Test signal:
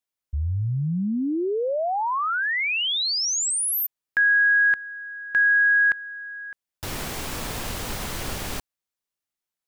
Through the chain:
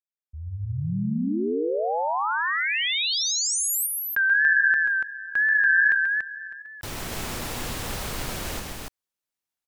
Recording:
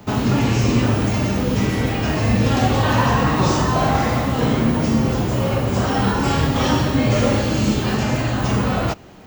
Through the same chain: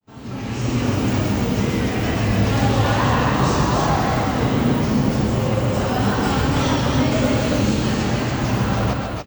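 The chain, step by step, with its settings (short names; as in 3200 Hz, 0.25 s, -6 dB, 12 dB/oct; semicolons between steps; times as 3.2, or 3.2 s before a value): opening faded in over 0.96 s; wow and flutter 100 cents; loudspeakers at several distances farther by 46 m -6 dB, 98 m -3 dB; gain -3 dB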